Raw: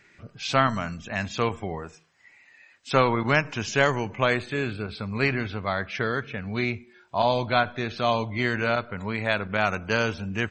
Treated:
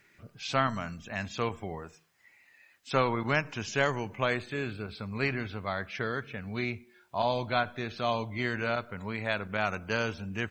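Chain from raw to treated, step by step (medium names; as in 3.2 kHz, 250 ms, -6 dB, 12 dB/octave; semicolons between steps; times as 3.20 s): word length cut 12-bit, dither triangular; trim -6 dB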